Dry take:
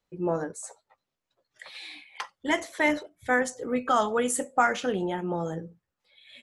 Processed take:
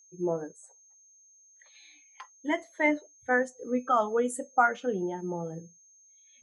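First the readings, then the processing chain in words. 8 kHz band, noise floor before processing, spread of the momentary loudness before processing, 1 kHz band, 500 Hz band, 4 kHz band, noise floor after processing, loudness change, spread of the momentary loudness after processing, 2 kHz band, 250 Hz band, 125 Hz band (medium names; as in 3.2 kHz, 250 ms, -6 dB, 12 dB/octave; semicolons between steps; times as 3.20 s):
-8.5 dB, under -85 dBFS, 17 LU, -1.5 dB, -1.5 dB, -11.5 dB, -60 dBFS, -1.5 dB, 11 LU, -2.0 dB, -2.0 dB, -4.5 dB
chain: whistle 6.4 kHz -46 dBFS; spectral contrast expander 1.5:1; trim -1 dB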